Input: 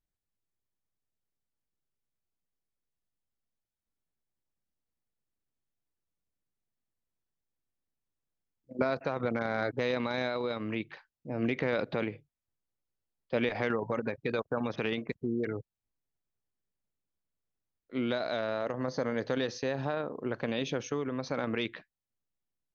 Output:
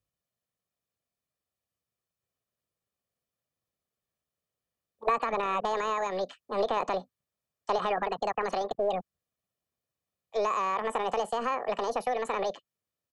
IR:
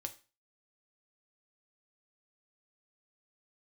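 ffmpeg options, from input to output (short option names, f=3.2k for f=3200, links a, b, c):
-filter_complex "[0:a]highpass=47,aecho=1:1:2.9:0.47,acrossover=split=220|340|1100[a][b][c][d];[a]aeval=exprs='clip(val(0),-1,0.00398)':c=same[e];[d]acompressor=threshold=-49dB:ratio=12[f];[e][b][c][f]amix=inputs=4:normalize=0,asetrate=76440,aresample=44100,volume=4dB"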